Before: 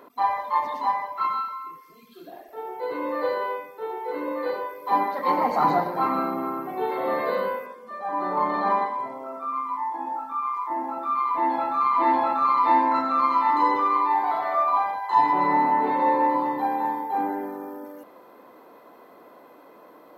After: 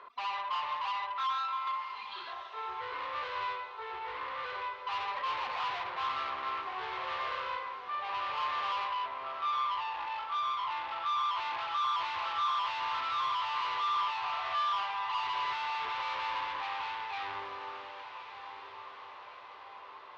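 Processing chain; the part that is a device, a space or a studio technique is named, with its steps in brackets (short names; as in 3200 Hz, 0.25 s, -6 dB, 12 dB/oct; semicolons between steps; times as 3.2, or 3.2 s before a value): 1.67–2.33 band shelf 2400 Hz +12 dB 2.4 oct; scooped metal amplifier (tube stage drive 34 dB, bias 0.35; speaker cabinet 100–3800 Hz, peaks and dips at 180 Hz -10 dB, 380 Hz +8 dB, 1100 Hz +9 dB; passive tone stack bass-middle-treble 10-0-10); diffused feedback echo 1.242 s, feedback 53%, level -10.5 dB; gain +6 dB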